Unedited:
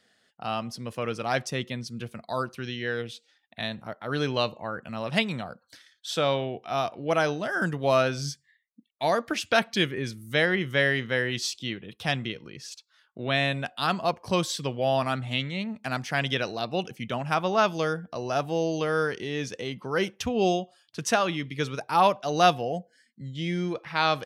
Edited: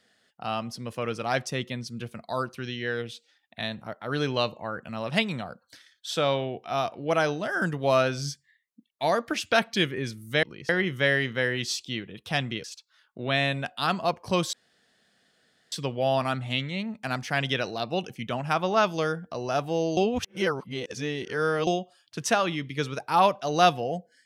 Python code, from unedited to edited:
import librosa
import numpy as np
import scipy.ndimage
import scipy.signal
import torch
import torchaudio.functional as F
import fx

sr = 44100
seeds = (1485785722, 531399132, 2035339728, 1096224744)

y = fx.edit(x, sr, fx.move(start_s=12.38, length_s=0.26, to_s=10.43),
    fx.insert_room_tone(at_s=14.53, length_s=1.19),
    fx.reverse_span(start_s=18.78, length_s=1.7), tone=tone)